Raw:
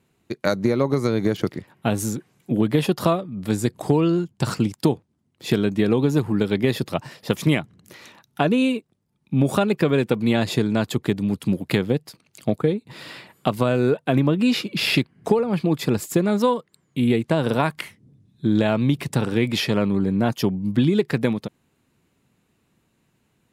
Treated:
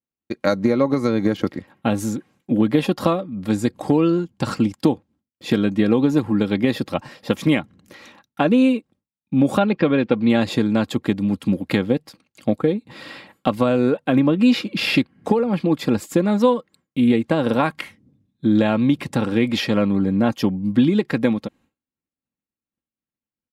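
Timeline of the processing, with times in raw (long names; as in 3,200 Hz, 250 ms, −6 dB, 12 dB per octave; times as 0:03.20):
0:09.57–0:10.30: low-pass filter 4,800 Hz 24 dB per octave
whole clip: downward expander −48 dBFS; high-shelf EQ 6,100 Hz −10 dB; comb filter 3.7 ms, depth 46%; level +1.5 dB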